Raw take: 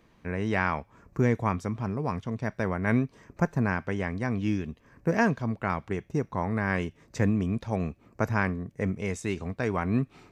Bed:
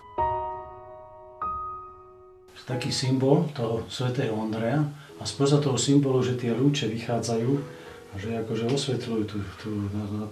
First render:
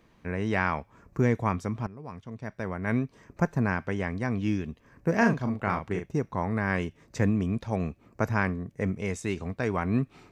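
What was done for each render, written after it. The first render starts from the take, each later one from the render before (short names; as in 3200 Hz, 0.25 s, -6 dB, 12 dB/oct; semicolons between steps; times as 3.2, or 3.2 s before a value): 1.87–3.42 fade in, from -15.5 dB; 5.15–6.06 doubler 39 ms -5.5 dB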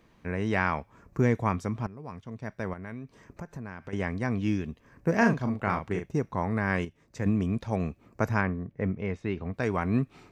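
2.73–3.93 compressor 5:1, threshold -37 dBFS; 6.85–7.26 gain -6.5 dB; 8.41–9.54 air absorption 310 m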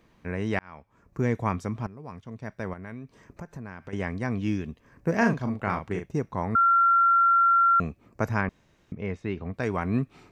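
0.59–1.42 fade in; 6.55–7.8 bleep 1370 Hz -16.5 dBFS; 8.49–8.92 room tone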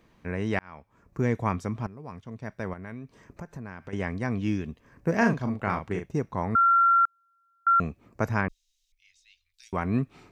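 7.05–7.67 steep high-pass 2700 Hz 48 dB/oct; 8.48–9.73 inverse Chebyshev band-stop 130–770 Hz, stop band 80 dB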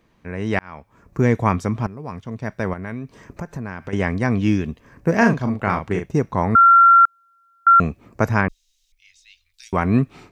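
AGC gain up to 9.5 dB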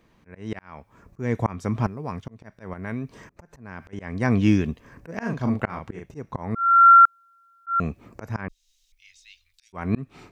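auto swell 0.341 s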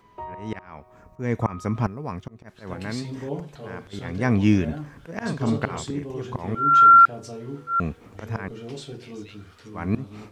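add bed -10.5 dB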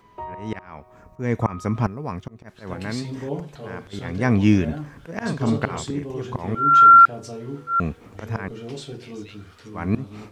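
gain +2 dB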